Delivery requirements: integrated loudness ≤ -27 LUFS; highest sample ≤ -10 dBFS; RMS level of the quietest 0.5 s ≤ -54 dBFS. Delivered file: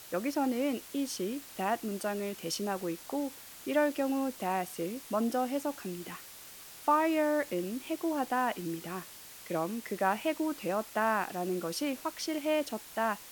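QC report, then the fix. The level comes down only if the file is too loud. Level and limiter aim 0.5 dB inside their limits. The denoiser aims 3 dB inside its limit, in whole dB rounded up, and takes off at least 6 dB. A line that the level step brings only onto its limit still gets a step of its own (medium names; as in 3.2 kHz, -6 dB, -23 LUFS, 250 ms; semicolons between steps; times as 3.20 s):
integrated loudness -33.0 LUFS: pass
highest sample -14.5 dBFS: pass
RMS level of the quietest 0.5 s -50 dBFS: fail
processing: noise reduction 7 dB, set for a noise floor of -50 dBFS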